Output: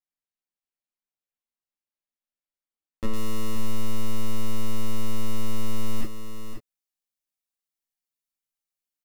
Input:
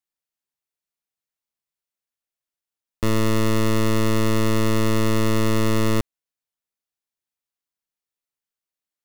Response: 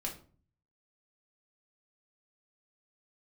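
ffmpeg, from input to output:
-filter_complex "[0:a]asetnsamples=n=441:p=0,asendcmd='3.13 highshelf g 8',highshelf=f=3.8k:g=-5[a];[1:a]atrim=start_sample=2205,atrim=end_sample=3087[b];[a][b]afir=irnorm=-1:irlink=0,alimiter=limit=-7.5dB:level=0:latency=1:release=24,aecho=1:1:526:0.355,volume=-7dB"

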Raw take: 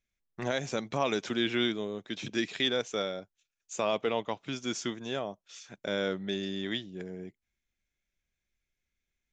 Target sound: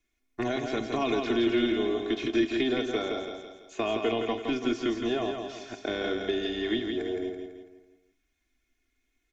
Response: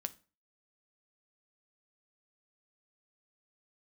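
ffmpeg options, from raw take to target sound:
-filter_complex "[0:a]acrossover=split=280|890|2000|4800[a][b][c][d][e];[a]acompressor=threshold=-40dB:ratio=4[f];[b]acompressor=threshold=-39dB:ratio=4[g];[c]acompressor=threshold=-53dB:ratio=4[h];[d]acompressor=threshold=-42dB:ratio=4[i];[e]acompressor=threshold=-53dB:ratio=4[j];[f][g][h][i][j]amix=inputs=5:normalize=0,tremolo=f=260:d=0.4,aecho=1:1:166|332|498|664|830:0.531|0.234|0.103|0.0452|0.0199,asoftclip=type=tanh:threshold=-23.5dB,asplit=2[k][l];[l]firequalizer=gain_entry='entry(110,0);entry(230,13);entry(330,10);entry(4100,3)':delay=0.05:min_phase=1[m];[1:a]atrim=start_sample=2205,asetrate=26019,aresample=44100[n];[m][n]afir=irnorm=-1:irlink=0,volume=-6dB[o];[k][o]amix=inputs=2:normalize=0,acrossover=split=4300[p][q];[q]acompressor=threshold=-57dB:ratio=4:attack=1:release=60[r];[p][r]amix=inputs=2:normalize=0,aecho=1:1:2.8:0.84"

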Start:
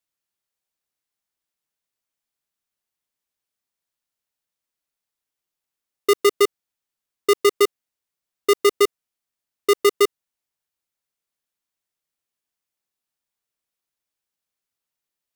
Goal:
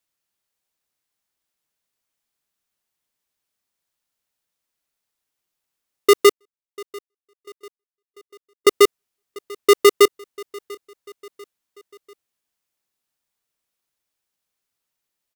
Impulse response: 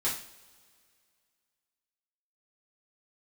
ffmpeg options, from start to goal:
-filter_complex "[0:a]asettb=1/sr,asplit=3[a][b][c];[a]atrim=end=6.324[d];[b]atrim=start=6.32:end=8.67,asetpts=PTS-STARTPTS,afade=t=in:d=0.004:c=qsin,afade=t=out:st=2.346:d=0.004:c=qsin,agate=range=-51dB:threshold=-3dB:ratio=16:detection=peak[e];[c]atrim=start=8.666[f];[d][e]acrossfade=d=0.004:c1=hsin:c2=qsin[g];[g][f]acrossfade=d=0.004:c1=qsin:c2=hsin,aecho=1:1:693|1386|2079:0.0708|0.0354|0.0177,volume=4.5dB"

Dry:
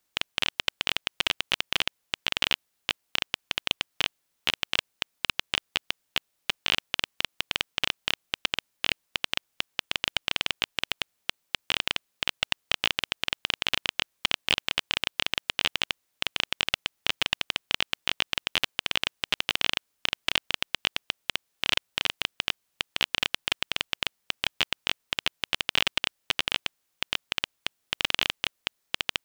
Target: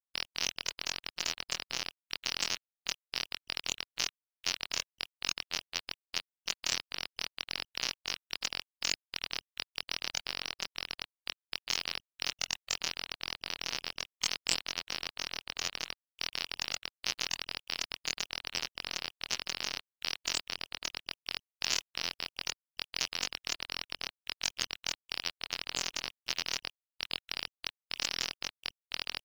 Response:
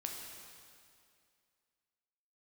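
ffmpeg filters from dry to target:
-af "afftfilt=real='re':imag='-im':win_size=2048:overlap=0.75,afftfilt=real='re*gte(hypot(re,im),0.00891)':imag='im*gte(hypot(re,im),0.00891)':win_size=1024:overlap=0.75,aexciter=amount=10.3:drive=8.8:freq=5.1k,acrusher=bits=8:dc=4:mix=0:aa=0.000001,adynamicequalizer=threshold=0.00891:dfrequency=1800:dqfactor=0.7:tfrequency=1800:tqfactor=0.7:attack=5:release=100:ratio=0.375:range=2.5:mode=cutabove:tftype=highshelf,volume=-3.5dB"

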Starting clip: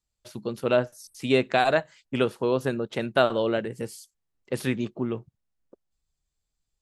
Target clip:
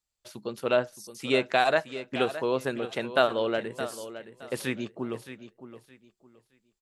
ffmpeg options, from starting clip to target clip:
-filter_complex "[0:a]lowshelf=f=300:g=-9.5,asplit=2[a][b];[b]aecho=0:1:618|1236|1854:0.237|0.0593|0.0148[c];[a][c]amix=inputs=2:normalize=0"

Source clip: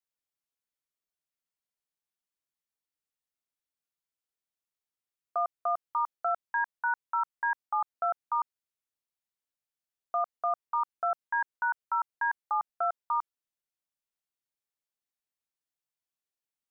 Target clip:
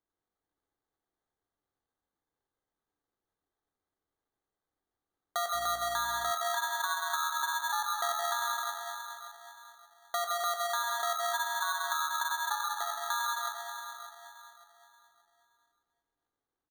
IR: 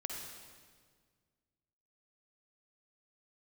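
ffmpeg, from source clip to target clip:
-filter_complex "[0:a]asplit=2[a][b];[b]adelay=576,lowpass=f=1.6k:p=1,volume=-13.5dB,asplit=2[c][d];[d]adelay=576,lowpass=f=1.6k:p=1,volume=0.38,asplit=2[e][f];[f]adelay=576,lowpass=f=1.6k:p=1,volume=0.38,asplit=2[g][h];[h]adelay=576,lowpass=f=1.6k:p=1,volume=0.38[i];[a][c][e][g][i]amix=inputs=5:normalize=0,asettb=1/sr,asplit=3[j][k][l];[j]atrim=end=12.554[m];[k]atrim=start=12.55:end=12.96,asetpts=PTS-STARTPTS,afade=t=in:d=0.004:c=qsin,afade=t=out:st=0.406:d=0.004:c=qsin,acrossover=split=490|1100[n][o][p];[n]acompressor=threshold=-56dB:ratio=4[q];[o]acompressor=threshold=-45dB:ratio=4[r];[p]acompressor=threshold=-40dB:ratio=4[s];[q][r][s]amix=inputs=3:normalize=0[t];[l]atrim=start=12.956[u];[m][t]acrossfade=d=0.004:c1=hsin:c2=qsin[v];[v][u]acrossfade=d=0.004:c1=qsin:c2=hsin[w];[1:a]atrim=start_sample=2205,asetrate=33516,aresample=44100[x];[w][x]afir=irnorm=-1:irlink=0,acrusher=samples=17:mix=1:aa=0.000001,acompressor=threshold=-29dB:ratio=6,aecho=1:1:2.5:0.31,asettb=1/sr,asplit=3[y][z][aa];[y]atrim=end=5.544[ab];[z]atrim=start=5.54:end=6.31,asetpts=PTS-STARTPTS,afade=t=in:d=0.004:c=qsin,afade=t=out:st=0.766:d=0.004:c=qsin,aeval=exprs='val(0)+0.002*(sin(2*PI*60*n/s)+sin(2*PI*2*60*n/s)/2+sin(2*PI*3*60*n/s)/3+sin(2*PI*4*60*n/s)/4+sin(2*PI*5*60*n/s)/5)':c=same[ac];[aa]atrim=start=6.306[ad];[ab][ac]acrossfade=d=0.004:c1=hsin:c2=qsin[ae];[ae][ad]acrossfade=d=0.004:c1=qsin:c2=hsin,equalizer=f=290:w=8:g=5"

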